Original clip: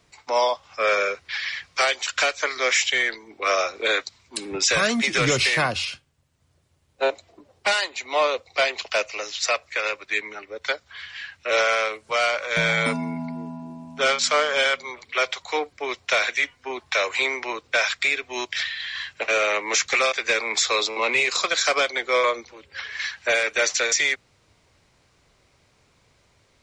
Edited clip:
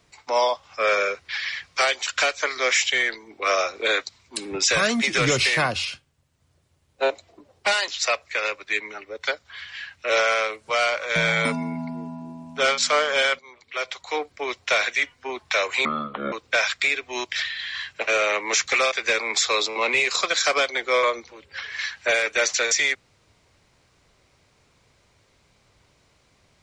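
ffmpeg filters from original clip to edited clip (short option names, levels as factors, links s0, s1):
-filter_complex "[0:a]asplit=5[s0][s1][s2][s3][s4];[s0]atrim=end=7.882[s5];[s1]atrim=start=9.288:end=14.8,asetpts=PTS-STARTPTS,afade=t=out:st=5.508:d=0.004:c=hsin:silence=0.16788[s6];[s2]atrim=start=14.8:end=17.264,asetpts=PTS-STARTPTS,afade=t=in:d=0.97:silence=0.16788[s7];[s3]atrim=start=17.26:end=17.53,asetpts=PTS-STARTPTS,asetrate=25137,aresample=44100,atrim=end_sample=20889,asetpts=PTS-STARTPTS[s8];[s4]atrim=start=17.526[s9];[s6][s7]concat=n=2:v=0:a=1[s10];[s5][s10]acrossfade=d=0.004:c1=hsin:c2=hsin[s11];[s11][s8]acrossfade=d=0.004:c1=hsin:c2=hsin[s12];[s12][s9]acrossfade=d=0.004:c1=hsin:c2=hsin"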